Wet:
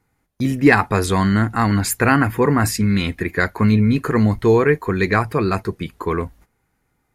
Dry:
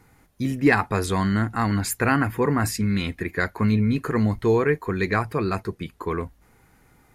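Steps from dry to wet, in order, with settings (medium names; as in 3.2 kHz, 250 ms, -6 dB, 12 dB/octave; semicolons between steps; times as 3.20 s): gate -50 dBFS, range -17 dB; trim +5.5 dB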